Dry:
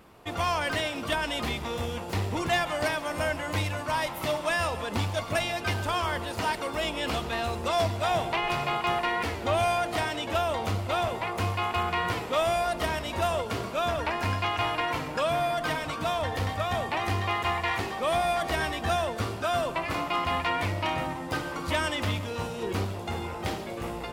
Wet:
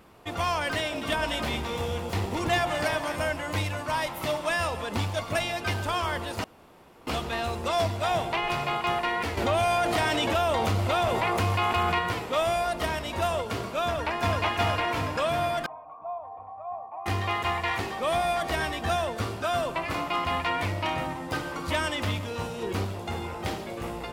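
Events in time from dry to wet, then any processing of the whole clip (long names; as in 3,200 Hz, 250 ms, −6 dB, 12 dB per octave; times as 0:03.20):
0:00.80–0:03.16: delay that swaps between a low-pass and a high-pass 107 ms, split 1,000 Hz, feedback 57%, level −4 dB
0:06.44–0:07.07: fill with room tone
0:09.37–0:11.99: envelope flattener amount 70%
0:13.85–0:14.42: delay throw 370 ms, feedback 60%, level −1 dB
0:15.66–0:17.06: formant resonators in series a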